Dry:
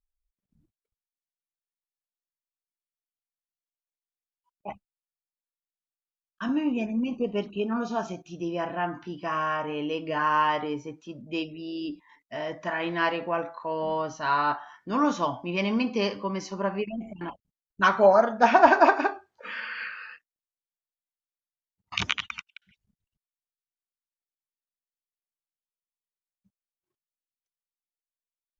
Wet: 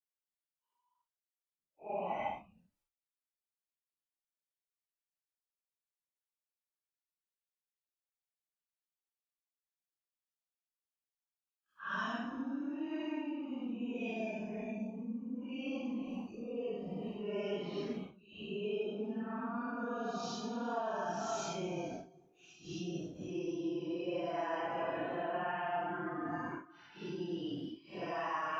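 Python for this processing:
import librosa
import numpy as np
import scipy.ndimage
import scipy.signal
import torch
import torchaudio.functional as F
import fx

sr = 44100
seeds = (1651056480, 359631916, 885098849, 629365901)

y = fx.level_steps(x, sr, step_db=22)
y = fx.bass_treble(y, sr, bass_db=-7, treble_db=-2)
y = fx.paulstretch(y, sr, seeds[0], factor=5.7, window_s=0.05, from_s=4.32)
y = F.gain(torch.from_numpy(y), 7.5).numpy()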